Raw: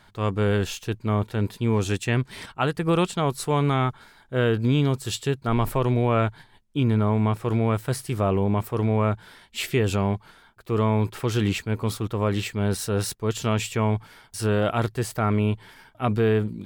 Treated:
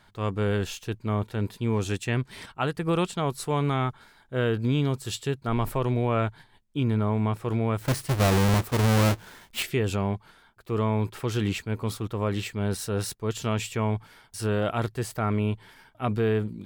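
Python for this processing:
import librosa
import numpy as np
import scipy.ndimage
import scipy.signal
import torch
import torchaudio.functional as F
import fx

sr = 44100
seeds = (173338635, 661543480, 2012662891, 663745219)

y = fx.halfwave_hold(x, sr, at=(7.81, 9.63))
y = y * 10.0 ** (-3.5 / 20.0)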